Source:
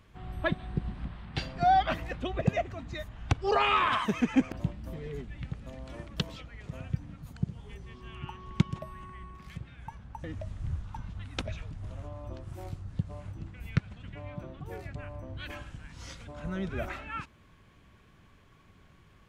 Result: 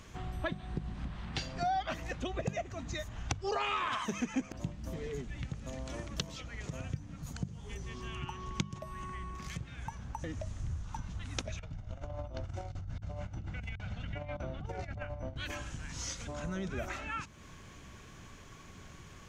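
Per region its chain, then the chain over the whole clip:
11.59–15.36 s: low-pass 3.9 kHz + comb 1.4 ms, depth 46% + compressor with a negative ratio -41 dBFS, ratio -0.5
whole clip: peaking EQ 6.4 kHz +12.5 dB 0.65 oct; hum notches 50/100/150/200 Hz; compression 2.5:1, threshold -47 dBFS; trim +7.5 dB

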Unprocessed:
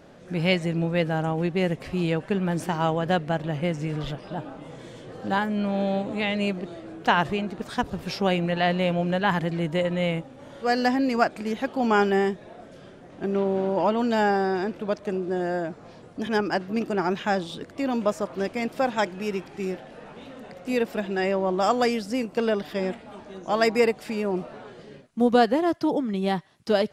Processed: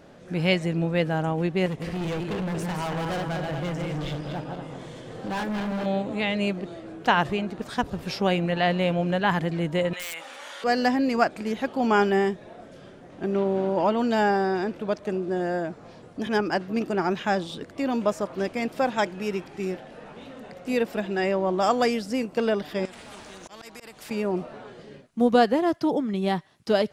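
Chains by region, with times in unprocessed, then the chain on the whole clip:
1.66–5.86 s: backward echo that repeats 116 ms, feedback 59%, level -5 dB + hard clipper -26.5 dBFS
9.93–10.64 s: high-pass 1.4 kHz + integer overflow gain 27 dB + level flattener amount 70%
22.85–24.11 s: slow attack 631 ms + compression 10:1, threshold -36 dBFS + spectrum-flattening compressor 2:1
whole clip: none

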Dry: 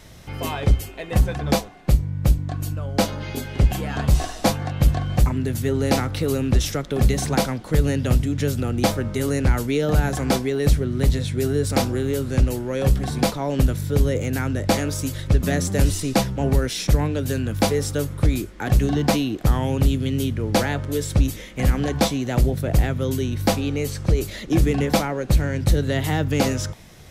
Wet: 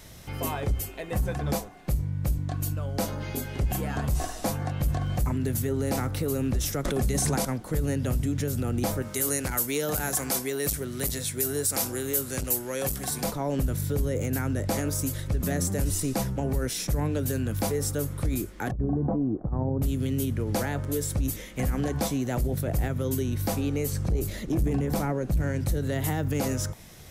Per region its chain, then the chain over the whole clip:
6.85–7.45 s: low-pass 11 kHz + treble shelf 5.3 kHz +6.5 dB + level flattener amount 100%
9.02–13.24 s: tilt EQ +3 dB/octave + transformer saturation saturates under 480 Hz
18.71–19.82 s: Bessel low-pass 700 Hz, order 6 + compressor with a negative ratio -19 dBFS, ratio -0.5
23.92–25.42 s: bass shelf 390 Hz +7.5 dB + valve stage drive 7 dB, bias 0.4
whole clip: dynamic bell 3.5 kHz, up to -7 dB, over -43 dBFS, Q 0.9; peak limiter -16 dBFS; treble shelf 8.1 kHz +9.5 dB; trim -3 dB

